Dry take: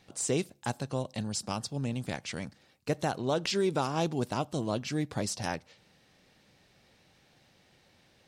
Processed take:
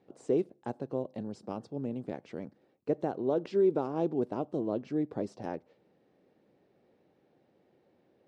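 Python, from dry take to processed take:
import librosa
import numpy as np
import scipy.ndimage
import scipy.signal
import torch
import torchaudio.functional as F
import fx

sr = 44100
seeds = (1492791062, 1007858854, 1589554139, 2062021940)

y = fx.bandpass_q(x, sr, hz=380.0, q=1.6)
y = y * librosa.db_to_amplitude(4.0)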